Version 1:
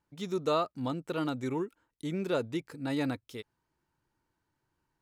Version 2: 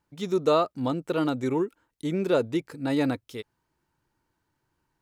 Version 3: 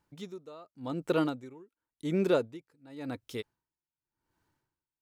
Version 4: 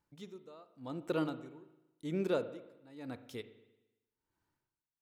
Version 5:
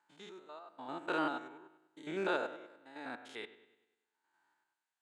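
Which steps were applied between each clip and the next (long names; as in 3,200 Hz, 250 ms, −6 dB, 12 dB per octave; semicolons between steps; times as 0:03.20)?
dynamic equaliser 450 Hz, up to +4 dB, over −41 dBFS, Q 0.78; level +4 dB
tremolo with a sine in dB 0.9 Hz, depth 27 dB
spring reverb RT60 1 s, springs 38/57 ms, chirp 35 ms, DRR 12.5 dB; level −6.5 dB
spectrum averaged block by block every 100 ms; loudspeaker in its box 460–8,500 Hz, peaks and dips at 500 Hz −8 dB, 840 Hz +8 dB, 1,600 Hz +9 dB, 5,500 Hz −9 dB; level +7 dB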